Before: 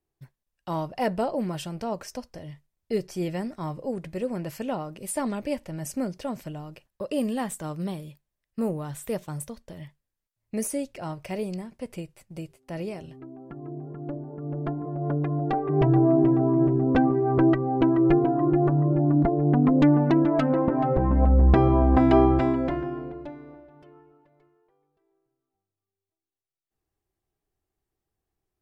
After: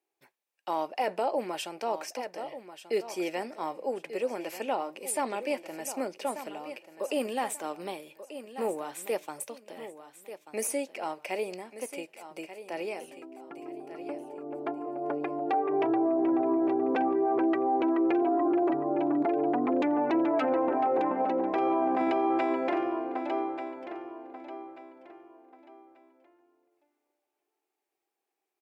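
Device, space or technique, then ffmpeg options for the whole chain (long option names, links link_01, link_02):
laptop speaker: -filter_complex "[0:a]asettb=1/sr,asplit=3[link_01][link_02][link_03];[link_01]atrim=end=18.134[link_04];[link_02]atrim=start=18.13:end=18.73,asetpts=PTS-STARTPTS,afade=type=in:duration=0.004:curve=qsin,afade=type=out:start_time=0.596:duration=0.004:curve=qsin,aecho=1:1:3.1:0.53,atrim=end_sample=26460[link_05];[link_03]atrim=start=18.726[link_06];[link_04][link_05]acrossfade=duration=0.004:curve1=hsin:curve2=qsin[link_07];[link_07][link_06]acrossfade=duration=0.004:curve1=qsin:curve2=hsin,highpass=frequency=320:width=0.5412,highpass=frequency=320:width=1.3066,equalizer=frequency=830:width_type=o:width=0.21:gain=6.5,equalizer=frequency=2400:width_type=o:width=0.38:gain=7.5,aecho=1:1:1187|2374|3561:0.237|0.0664|0.0186,alimiter=limit=-19.5dB:level=0:latency=1:release=13"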